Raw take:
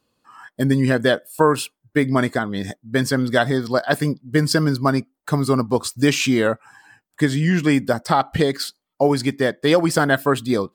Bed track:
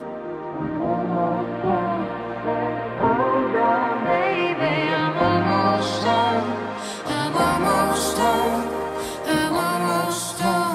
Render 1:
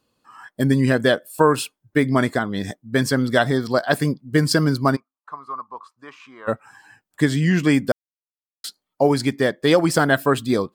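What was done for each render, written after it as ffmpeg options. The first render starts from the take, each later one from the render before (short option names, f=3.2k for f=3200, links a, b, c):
-filter_complex "[0:a]asplit=3[a][b][c];[a]afade=t=out:st=4.95:d=0.02[d];[b]bandpass=f=1.1k:t=q:w=7.6,afade=t=in:st=4.95:d=0.02,afade=t=out:st=6.47:d=0.02[e];[c]afade=t=in:st=6.47:d=0.02[f];[d][e][f]amix=inputs=3:normalize=0,asplit=3[g][h][i];[g]atrim=end=7.92,asetpts=PTS-STARTPTS,afade=t=out:st=7.916:d=0.004:c=hsin[j];[h]atrim=start=7.92:end=8.64,asetpts=PTS-STARTPTS,volume=0[k];[i]atrim=start=8.64,asetpts=PTS-STARTPTS,afade=t=in:d=0.004:c=hsin[l];[j][k][l]concat=n=3:v=0:a=1"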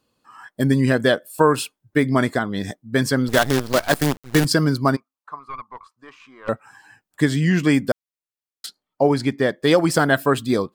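-filter_complex "[0:a]asettb=1/sr,asplit=3[a][b][c];[a]atrim=end=3.284[d];[b]atrim=start=3.28:end=4.45,asetpts=PTS-STARTPTS,afade=t=in:d=0.004:c=qsin,afade=t=out:st=1.166:d=0.004:c=qsin,acrusher=bits=4:dc=4:mix=0:aa=0.000001[e];[c]atrim=start=4.446[f];[d][e]acrossfade=d=0.004:c1=hsin:c2=qsin[g];[g][f]acrossfade=d=0.004:c1=qsin:c2=hsin,asettb=1/sr,asplit=3[h][i][j];[h]atrim=end=5.394[k];[i]atrim=start=5.39:end=6.49,asetpts=PTS-STARTPTS,afade=t=in:d=0.004:c=qsin,afade=t=out:st=1.096:d=0.004:c=qsin,aeval=exprs='(tanh(15.8*val(0)+0.55)-tanh(0.55))/15.8':c=same[l];[j]atrim=start=6.486[m];[k][l]acrossfade=d=0.004:c1=hsin:c2=qsin[n];[n][m]acrossfade=d=0.004:c1=qsin:c2=hsin,asettb=1/sr,asplit=3[o][p][q];[o]atrim=end=8.664[r];[p]atrim=start=8.66:end=9.49,asetpts=PTS-STARTPTS,afade=t=in:d=0.004:c=qsin,afade=t=out:st=0.826:d=0.004:c=qsin,highshelf=f=5.4k:g=-9[s];[q]atrim=start=9.486[t];[r][s]acrossfade=d=0.004:c1=hsin:c2=qsin[u];[u][t]acrossfade=d=0.004:c1=qsin:c2=hsin"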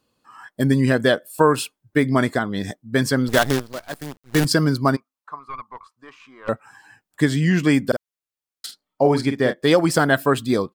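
-filter_complex "[0:a]asplit=3[a][b][c];[a]afade=t=out:st=7.91:d=0.02[d];[b]asplit=2[e][f];[f]adelay=47,volume=-8.5dB[g];[e][g]amix=inputs=2:normalize=0,afade=t=in:st=7.91:d=0.02,afade=t=out:st=9.52:d=0.02[h];[c]afade=t=in:st=9.52:d=0.02[i];[d][h][i]amix=inputs=3:normalize=0,asplit=3[j][k][l];[j]atrim=end=3.68,asetpts=PTS-STARTPTS,afade=t=out:st=3.52:d=0.16:silence=0.211349[m];[k]atrim=start=3.68:end=4.25,asetpts=PTS-STARTPTS,volume=-13.5dB[n];[l]atrim=start=4.25,asetpts=PTS-STARTPTS,afade=t=in:d=0.16:silence=0.211349[o];[m][n][o]concat=n=3:v=0:a=1"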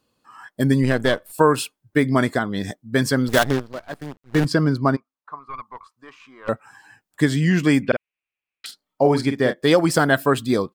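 -filter_complex "[0:a]asplit=3[a][b][c];[a]afade=t=out:st=0.82:d=0.02[d];[b]aeval=exprs='if(lt(val(0),0),0.447*val(0),val(0))':c=same,afade=t=in:st=0.82:d=0.02,afade=t=out:st=1.31:d=0.02[e];[c]afade=t=in:st=1.31:d=0.02[f];[d][e][f]amix=inputs=3:normalize=0,asettb=1/sr,asplit=3[g][h][i];[g]atrim=end=3.444[j];[h]atrim=start=3.44:end=5.54,asetpts=PTS-STARTPTS,afade=t=in:d=0.004:c=qsin,afade=t=out:st=2.096:d=0.004:c=qsin,lowpass=f=2.2k:p=1[k];[i]atrim=start=5.536[l];[j][k]acrossfade=d=0.004:c1=hsin:c2=qsin[m];[m][l]acrossfade=d=0.004:c1=qsin:c2=hsin,asettb=1/sr,asplit=3[n][o][p];[n]atrim=end=7.834[q];[o]atrim=start=7.83:end=8.66,asetpts=PTS-STARTPTS,afade=t=in:d=0.004:c=qsin,afade=t=out:st=0.826:d=0.004:c=qsin,lowpass=f=2.5k:t=q:w=7.1[r];[p]atrim=start=8.656[s];[q][r]acrossfade=d=0.004:c1=hsin:c2=qsin[t];[t][s]acrossfade=d=0.004:c1=qsin:c2=hsin"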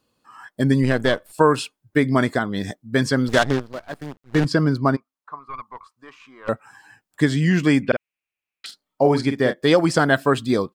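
-filter_complex "[0:a]acrossover=split=8500[a][b];[b]acompressor=threshold=-53dB:ratio=4:attack=1:release=60[c];[a][c]amix=inputs=2:normalize=0"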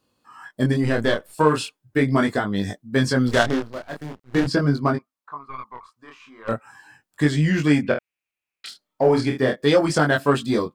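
-filter_complex "[0:a]asplit=2[a][b];[b]asoftclip=type=tanh:threshold=-17dB,volume=-7.5dB[c];[a][c]amix=inputs=2:normalize=0,flanger=delay=20:depth=6.8:speed=0.4"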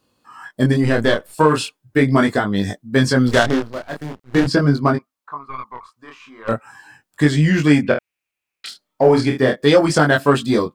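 -af "volume=4.5dB,alimiter=limit=-2dB:level=0:latency=1"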